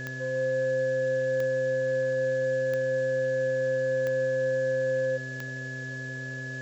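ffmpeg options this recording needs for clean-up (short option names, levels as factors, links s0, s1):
-af "adeclick=t=4,bandreject=f=129.9:t=h:w=4,bandreject=f=259.8:t=h:w=4,bandreject=f=389.7:t=h:w=4,bandreject=f=519.6:t=h:w=4,bandreject=f=649.5:t=h:w=4,bandreject=f=1700:w=30,afftdn=nr=30:nf=-36"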